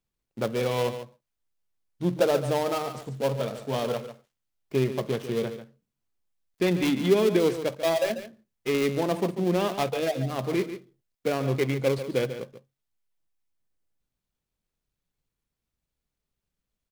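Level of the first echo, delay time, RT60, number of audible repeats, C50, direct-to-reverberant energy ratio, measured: -11.0 dB, 143 ms, no reverb, 1, no reverb, no reverb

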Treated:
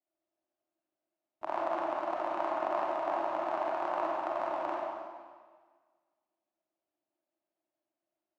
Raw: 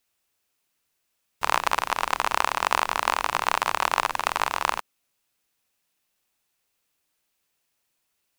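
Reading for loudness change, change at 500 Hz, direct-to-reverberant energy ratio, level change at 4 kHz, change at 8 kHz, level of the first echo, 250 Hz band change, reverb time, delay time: -9.0 dB, +2.0 dB, -4.0 dB, -23.5 dB, under -30 dB, no echo, +1.5 dB, 1.6 s, no echo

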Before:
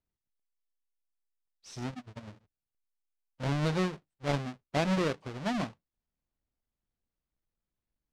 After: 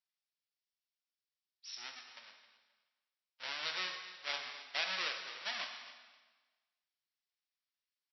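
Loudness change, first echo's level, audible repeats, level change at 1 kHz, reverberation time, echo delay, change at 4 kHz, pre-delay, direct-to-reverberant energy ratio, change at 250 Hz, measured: -6.5 dB, -15.5 dB, 2, -8.5 dB, 1.3 s, 263 ms, +4.5 dB, 6 ms, 3.5 dB, -31.0 dB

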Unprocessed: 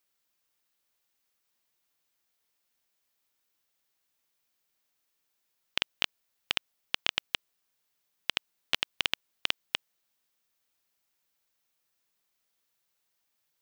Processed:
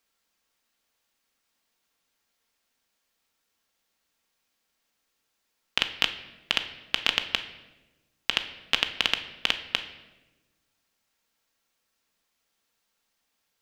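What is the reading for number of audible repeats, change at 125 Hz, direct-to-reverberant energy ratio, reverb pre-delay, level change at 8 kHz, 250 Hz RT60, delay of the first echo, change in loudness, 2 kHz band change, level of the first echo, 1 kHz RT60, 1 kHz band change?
no echo, +4.5 dB, 6.0 dB, 4 ms, +3.5 dB, 1.6 s, no echo, +5.5 dB, +5.5 dB, no echo, 0.95 s, +6.0 dB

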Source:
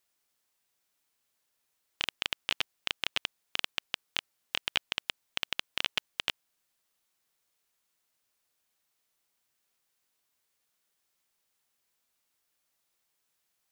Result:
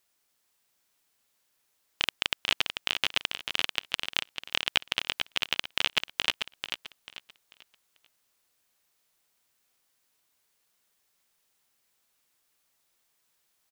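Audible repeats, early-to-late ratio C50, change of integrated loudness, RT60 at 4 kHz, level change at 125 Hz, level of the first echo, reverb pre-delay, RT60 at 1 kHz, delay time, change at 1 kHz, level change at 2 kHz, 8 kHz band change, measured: 3, no reverb, +4.5 dB, no reverb, +5.0 dB, -6.5 dB, no reverb, no reverb, 441 ms, +5.0 dB, +5.0 dB, +5.0 dB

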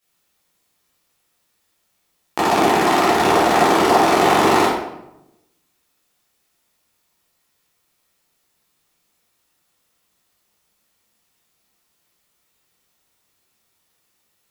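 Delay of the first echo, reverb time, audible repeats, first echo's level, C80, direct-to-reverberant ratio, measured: no echo, 0.85 s, no echo, no echo, 4.0 dB, -11.5 dB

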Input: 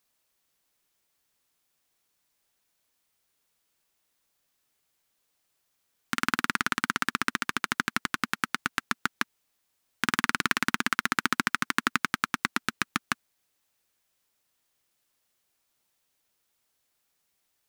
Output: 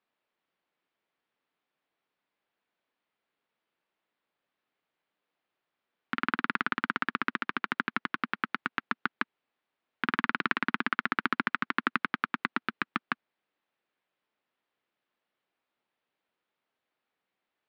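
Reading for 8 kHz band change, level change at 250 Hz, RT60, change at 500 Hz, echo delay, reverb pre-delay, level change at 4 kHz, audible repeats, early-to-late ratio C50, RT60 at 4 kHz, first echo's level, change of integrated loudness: under -30 dB, -2.0 dB, no reverb, -1.0 dB, no echo, no reverb, -8.0 dB, no echo, no reverb, no reverb, no echo, -3.0 dB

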